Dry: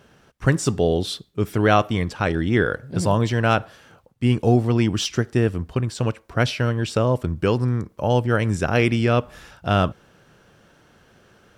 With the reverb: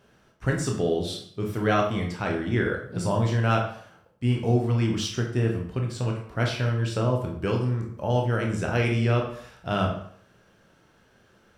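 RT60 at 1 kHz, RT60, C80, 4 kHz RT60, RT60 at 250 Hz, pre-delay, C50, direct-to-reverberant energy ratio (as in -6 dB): 0.60 s, 0.60 s, 9.5 dB, 0.50 s, 0.55 s, 14 ms, 6.0 dB, 0.5 dB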